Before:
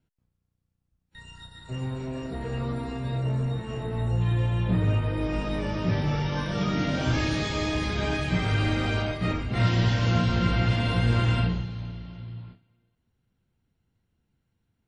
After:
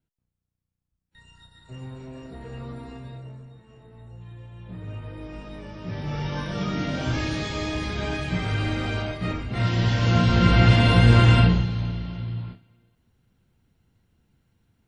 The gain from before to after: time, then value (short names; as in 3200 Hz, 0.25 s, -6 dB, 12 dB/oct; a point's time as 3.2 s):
2.96 s -6.5 dB
3.5 s -18 dB
4.5 s -18 dB
5.06 s -10 dB
5.78 s -10 dB
6.25 s -1 dB
9.64 s -1 dB
10.65 s +8 dB